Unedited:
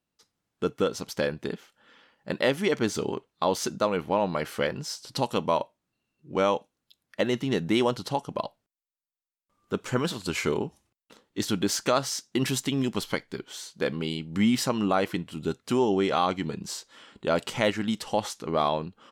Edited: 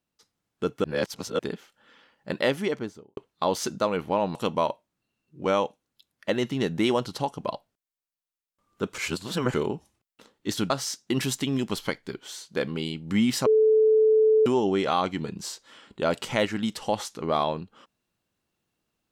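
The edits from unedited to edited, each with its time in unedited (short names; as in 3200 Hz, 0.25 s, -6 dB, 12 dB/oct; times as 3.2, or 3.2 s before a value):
0.84–1.39 reverse
2.47–3.17 studio fade out
4.35–5.26 cut
9.89–10.45 reverse
11.61–11.95 cut
14.71–15.71 bleep 436 Hz -15.5 dBFS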